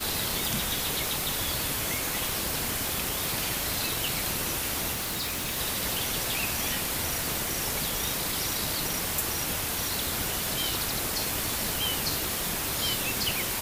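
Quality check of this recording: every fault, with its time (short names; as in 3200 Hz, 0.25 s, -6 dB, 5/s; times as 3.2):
crackle 390/s -33 dBFS
4.92–5.58 clipped -28 dBFS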